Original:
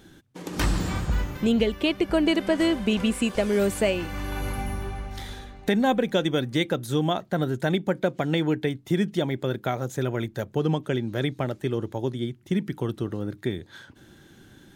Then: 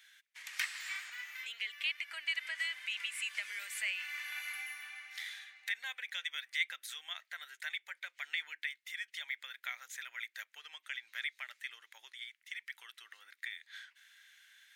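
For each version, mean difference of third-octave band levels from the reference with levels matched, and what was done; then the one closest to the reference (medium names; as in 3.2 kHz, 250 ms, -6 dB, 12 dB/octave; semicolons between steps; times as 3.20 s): 18.0 dB: compression 3:1, threshold -25 dBFS, peak gain reduction 6.5 dB; ladder high-pass 1.8 kHz, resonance 60%; trim +4.5 dB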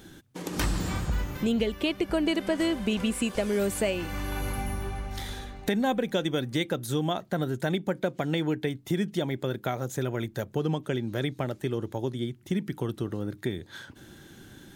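2.5 dB: treble shelf 7.1 kHz +5 dB; compression 1.5:1, threshold -36 dBFS, peak gain reduction 7 dB; trim +2 dB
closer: second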